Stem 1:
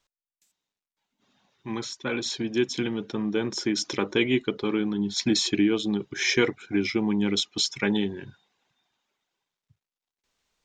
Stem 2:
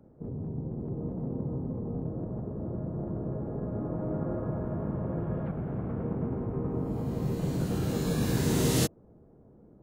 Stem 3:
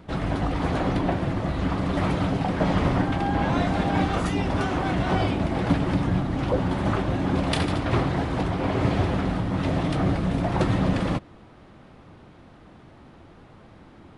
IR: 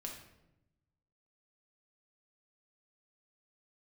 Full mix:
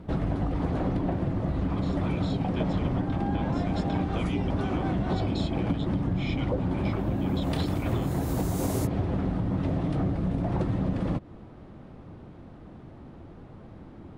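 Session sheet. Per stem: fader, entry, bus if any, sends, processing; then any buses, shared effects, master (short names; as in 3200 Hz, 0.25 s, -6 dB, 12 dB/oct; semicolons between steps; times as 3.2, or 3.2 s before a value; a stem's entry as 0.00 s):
-2.0 dB, 0.00 s, bus A, no send, fixed phaser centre 1700 Hz, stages 6
0.0 dB, 0.00 s, bus A, no send, differentiator
-1.5 dB, 0.00 s, no bus, no send, tilt shelf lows +6 dB, about 860 Hz
bus A: 0.0 dB, limiter -24.5 dBFS, peak gain reduction 8 dB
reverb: off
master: compressor, threshold -24 dBFS, peak gain reduction 11.5 dB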